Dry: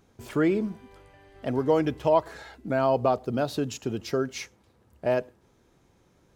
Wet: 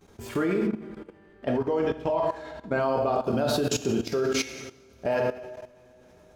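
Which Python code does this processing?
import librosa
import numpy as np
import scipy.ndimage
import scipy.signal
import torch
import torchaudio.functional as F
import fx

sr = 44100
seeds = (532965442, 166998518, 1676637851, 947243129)

y = fx.rider(x, sr, range_db=4, speed_s=0.5)
y = fx.rev_double_slope(y, sr, seeds[0], early_s=0.79, late_s=3.3, knee_db=-19, drr_db=0.5)
y = fx.level_steps(y, sr, step_db=15)
y = fx.high_shelf(y, sr, hz=fx.line((0.66, 4700.0), (2.79, 9000.0)), db=-11.0, at=(0.66, 2.79), fade=0.02)
y = y * librosa.db_to_amplitude(5.5)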